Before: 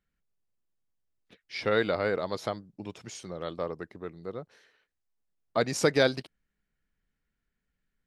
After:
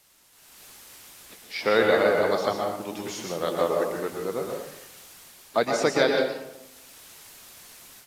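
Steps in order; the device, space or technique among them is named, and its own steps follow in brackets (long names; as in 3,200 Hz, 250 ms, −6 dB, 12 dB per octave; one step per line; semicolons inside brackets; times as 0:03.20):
filmed off a television (band-pass filter 220–7,800 Hz; parametric band 840 Hz +4 dB 0.57 octaves; convolution reverb RT60 0.80 s, pre-delay 111 ms, DRR 0.5 dB; white noise bed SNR 23 dB; automatic gain control gain up to 13.5 dB; level −6 dB; AAC 64 kbit/s 32,000 Hz)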